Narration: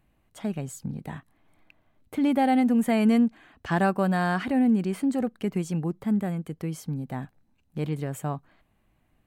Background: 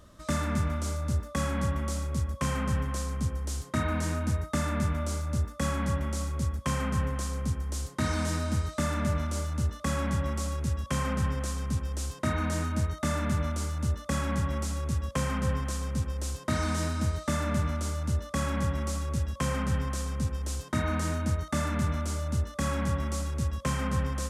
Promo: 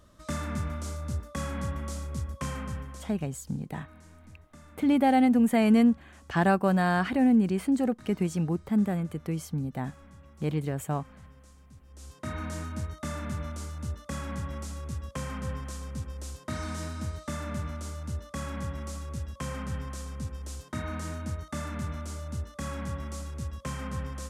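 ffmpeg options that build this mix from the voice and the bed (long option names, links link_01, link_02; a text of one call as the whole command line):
ffmpeg -i stem1.wav -i stem2.wav -filter_complex "[0:a]adelay=2650,volume=0dB[link_01];[1:a]volume=13dB,afade=type=out:start_time=2.41:duration=0.87:silence=0.112202,afade=type=in:start_time=11.86:duration=0.5:silence=0.141254[link_02];[link_01][link_02]amix=inputs=2:normalize=0" out.wav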